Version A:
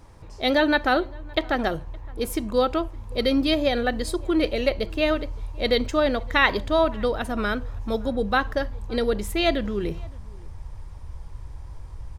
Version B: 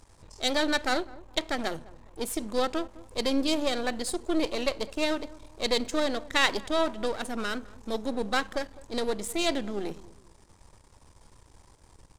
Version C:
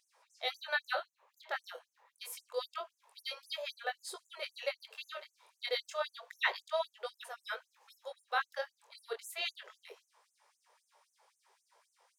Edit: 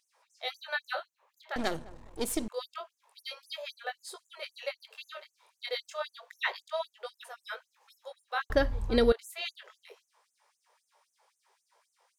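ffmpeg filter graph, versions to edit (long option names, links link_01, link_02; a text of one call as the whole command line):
ffmpeg -i take0.wav -i take1.wav -i take2.wav -filter_complex "[2:a]asplit=3[link_01][link_02][link_03];[link_01]atrim=end=1.562[link_04];[1:a]atrim=start=1.558:end=2.482[link_05];[link_02]atrim=start=2.478:end=8.502[link_06];[0:a]atrim=start=8.498:end=9.122[link_07];[link_03]atrim=start=9.118[link_08];[link_04][link_05]acrossfade=duration=0.004:curve1=hsin:curve2=hsin[link_09];[link_09][link_06]acrossfade=duration=0.004:curve1=hsin:curve2=hsin[link_10];[link_10][link_07]acrossfade=duration=0.004:curve1=hsin:curve2=hsin[link_11];[link_11][link_08]acrossfade=duration=0.004:curve1=hsin:curve2=hsin" out.wav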